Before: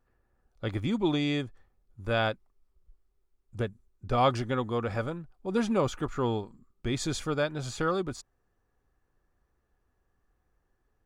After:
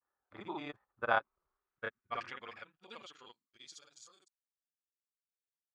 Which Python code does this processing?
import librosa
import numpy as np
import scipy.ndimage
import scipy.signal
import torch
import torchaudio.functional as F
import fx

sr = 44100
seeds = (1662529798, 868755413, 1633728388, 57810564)

y = fx.doppler_pass(x, sr, speed_mps=6, closest_m=4.5, pass_at_s=2.74)
y = fx.granulator(y, sr, seeds[0], grain_ms=100.0, per_s=20.0, spray_ms=100.0, spread_st=0)
y = fx.stretch_grains(y, sr, factor=0.52, grain_ms=56.0)
y = fx.filter_sweep_bandpass(y, sr, from_hz=1100.0, to_hz=7900.0, start_s=1.39, end_s=4.28, q=1.8)
y = y * librosa.db_to_amplitude(8.5)